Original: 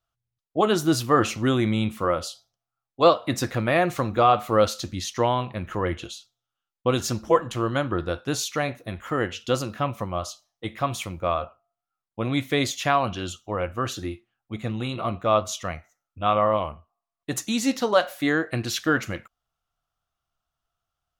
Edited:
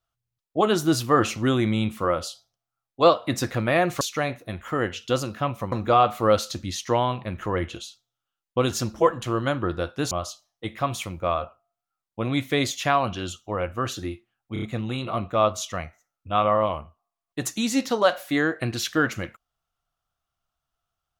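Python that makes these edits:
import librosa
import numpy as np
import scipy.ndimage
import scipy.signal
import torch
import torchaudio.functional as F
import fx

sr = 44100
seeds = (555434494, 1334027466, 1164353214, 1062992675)

y = fx.edit(x, sr, fx.move(start_s=8.4, length_s=1.71, to_s=4.01),
    fx.stutter(start_s=14.53, slice_s=0.03, count=4), tone=tone)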